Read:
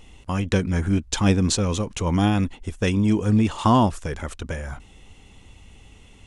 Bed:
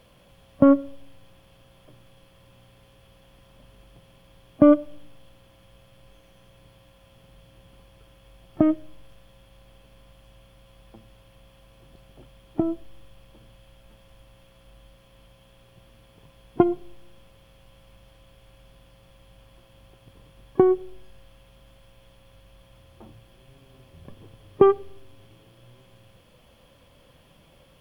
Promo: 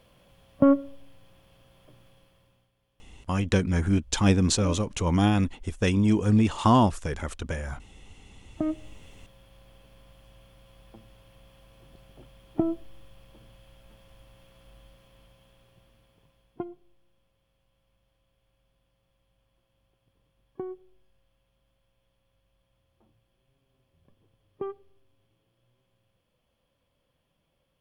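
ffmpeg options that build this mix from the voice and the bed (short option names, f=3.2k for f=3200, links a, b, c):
-filter_complex "[0:a]adelay=3000,volume=-2dB[a];[1:a]volume=14.5dB,afade=t=out:st=2.06:d=0.65:silence=0.158489,afade=t=in:st=8.43:d=0.65:silence=0.125893,afade=t=out:st=14.78:d=1.9:silence=0.133352[b];[a][b]amix=inputs=2:normalize=0"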